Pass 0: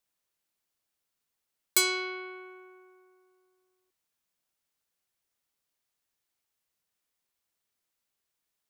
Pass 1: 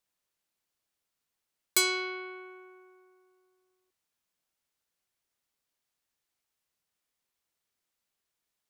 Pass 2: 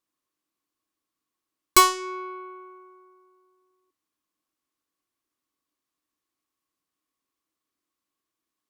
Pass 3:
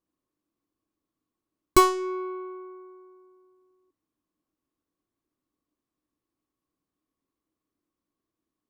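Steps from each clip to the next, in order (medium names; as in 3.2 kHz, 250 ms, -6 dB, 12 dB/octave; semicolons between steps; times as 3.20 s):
treble shelf 11 kHz -4 dB
Chebyshev shaper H 2 -9 dB, 7 -14 dB, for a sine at -11.5 dBFS; small resonant body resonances 300/1100 Hz, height 16 dB, ringing for 45 ms; trim +5.5 dB
tilt shelf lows +9 dB, about 820 Hz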